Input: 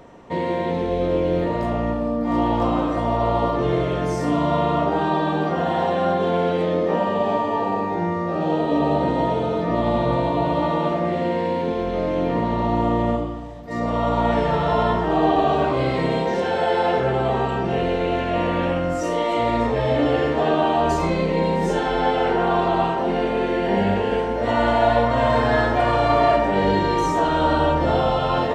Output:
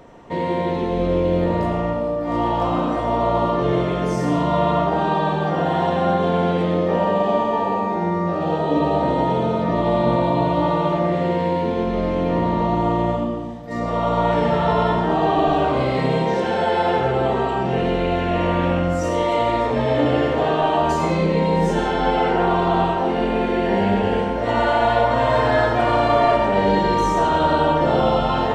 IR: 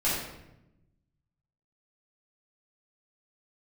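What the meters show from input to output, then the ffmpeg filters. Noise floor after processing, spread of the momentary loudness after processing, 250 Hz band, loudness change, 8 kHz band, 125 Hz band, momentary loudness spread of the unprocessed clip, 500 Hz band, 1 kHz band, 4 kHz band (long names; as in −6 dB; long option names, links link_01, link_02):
−23 dBFS, 4 LU, +1.0 dB, +1.5 dB, can't be measured, +2.0 dB, 5 LU, +1.0 dB, +1.5 dB, +1.0 dB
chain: -filter_complex "[0:a]asplit=2[link_01][link_02];[1:a]atrim=start_sample=2205,asetrate=57330,aresample=44100,adelay=78[link_03];[link_02][link_03]afir=irnorm=-1:irlink=0,volume=-14dB[link_04];[link_01][link_04]amix=inputs=2:normalize=0"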